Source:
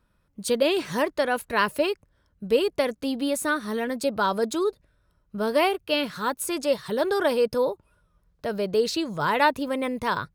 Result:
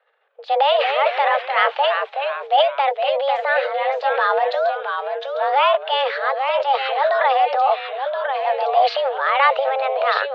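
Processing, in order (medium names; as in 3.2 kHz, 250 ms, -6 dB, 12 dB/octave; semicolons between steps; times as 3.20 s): transient shaper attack -2 dB, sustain +11 dB; ever faster or slower copies 155 ms, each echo -2 st, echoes 3, each echo -6 dB; mistuned SSB +270 Hz 220–3300 Hz; trim +5 dB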